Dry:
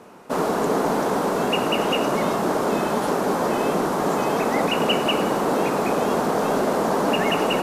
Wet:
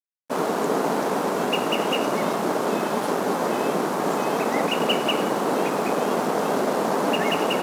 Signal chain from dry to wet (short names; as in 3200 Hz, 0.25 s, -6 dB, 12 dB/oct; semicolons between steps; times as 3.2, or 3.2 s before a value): crossover distortion -35 dBFS; HPF 150 Hz 12 dB/oct